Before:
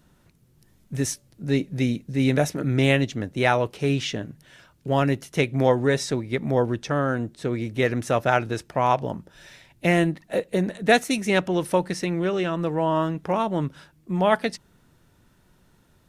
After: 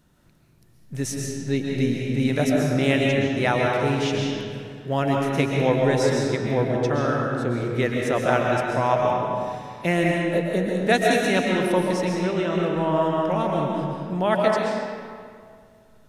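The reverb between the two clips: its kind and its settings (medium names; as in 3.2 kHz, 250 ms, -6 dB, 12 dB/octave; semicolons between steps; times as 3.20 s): algorithmic reverb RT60 2.1 s, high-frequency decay 0.7×, pre-delay 90 ms, DRR -1.5 dB; trim -2.5 dB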